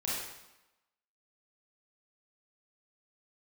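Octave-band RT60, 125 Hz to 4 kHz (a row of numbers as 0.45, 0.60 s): 0.85, 0.90, 0.90, 1.0, 0.90, 0.85 s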